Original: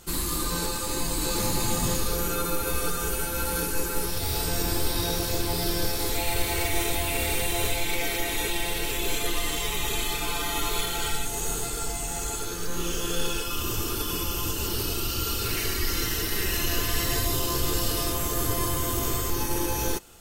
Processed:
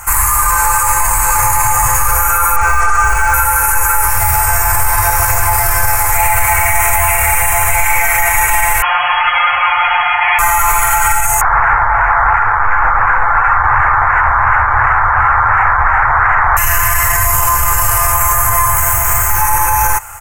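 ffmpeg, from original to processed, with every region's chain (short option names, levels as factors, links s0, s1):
-filter_complex "[0:a]asettb=1/sr,asplit=3[s0][s1][s2];[s0]atrim=end=2.564[s3];[s1]atrim=start=2.56:end=3.34,asetpts=PTS-STARTPTS,afade=t=in:d=0.004:c=qsin,afade=t=out:st=0.776:d=0.004:c=qsin,lowpass=f=6900:w=0.5412,lowpass=f=6900:w=1.3066,aecho=1:1:2.6:0.45,atrim=end_sample=34398,acrusher=bits=8:dc=4:mix=0:aa=0.000001[s4];[s2]atrim=start=3.336[s5];[s3][s4]acrossfade=d=0.004:c1=hsin:c2=qsin[s6];[s6][s5]acrossfade=d=0.004:c1=qsin:c2=hsin,asettb=1/sr,asplit=3[s7][s8][s9];[s7]atrim=end=8.824[s10];[s8]atrim=start=8.82:end=10.39,asetpts=PTS-STARTPTS,afade=t=in:d=0.004:c=qsin,afade=t=out:st=1.566:d=0.004:c=qsin,equalizer=f=110:t=o:w=1.2:g=-14.5,adynamicsmooth=sensitivity=6:basefreq=1900,lowpass=f=2800:t=q:w=0.5098,lowpass=f=2800:t=q:w=0.6013,lowpass=f=2800:t=q:w=0.9,lowpass=f=2800:t=q:w=2.563,afreqshift=-3300[s11];[s9]atrim=start=10.386[s12];[s10][s11]acrossfade=d=0.004:c1=hsin:c2=qsin[s13];[s13][s12]acrossfade=d=0.004:c1=qsin:c2=hsin,asettb=1/sr,asplit=3[s14][s15][s16];[s14]atrim=end=11.414[s17];[s15]atrim=start=11.41:end=16.57,asetpts=PTS-STARTPTS,afade=t=in:d=0.004:c=qsin,afade=t=out:st=5.156:d=0.004:c=qsin,acrusher=samples=13:mix=1:aa=0.000001:lfo=1:lforange=7.8:lforate=2.8,lowpass=f=1500:t=q:w=1.8[s18];[s16]atrim=start=16.566[s19];[s17][s18]acrossfade=d=0.004:c1=hsin:c2=qsin[s20];[s20][s19]acrossfade=d=0.004:c1=qsin:c2=hsin,asettb=1/sr,asplit=3[s21][s22][s23];[s21]atrim=end=18.764[s24];[s22]atrim=start=18.76:end=19.42,asetpts=PTS-STARTPTS,afade=t=in:d=0.004:c=qsin,afade=t=out:st=0.656:d=0.004:c=qsin,acrusher=bits=2:mode=log:mix=0:aa=0.000001,asuperstop=centerf=1100:order=4:qfactor=5.8[s25];[s23]atrim=start=19.416[s26];[s24][s25]acrossfade=d=0.004:c1=hsin:c2=qsin[s27];[s27][s26]acrossfade=d=0.004:c1=qsin:c2=hsin,firequalizer=gain_entry='entry(110,0);entry(170,-26);entry(340,-23);entry(840,10);entry(2200,6);entry(3600,-25);entry(6700,2);entry(9500,4)':delay=0.05:min_phase=1,alimiter=level_in=9.44:limit=0.891:release=50:level=0:latency=1,volume=0.891"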